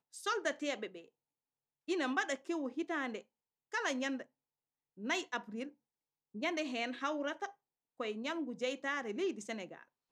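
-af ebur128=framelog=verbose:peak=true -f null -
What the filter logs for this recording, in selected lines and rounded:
Integrated loudness:
  I:         -38.4 LUFS
  Threshold: -48.9 LUFS
Loudness range:
  LRA:         1.8 LU
  Threshold: -59.5 LUFS
  LRA low:   -40.4 LUFS
  LRA high:  -38.6 LUFS
True peak:
  Peak:      -19.6 dBFS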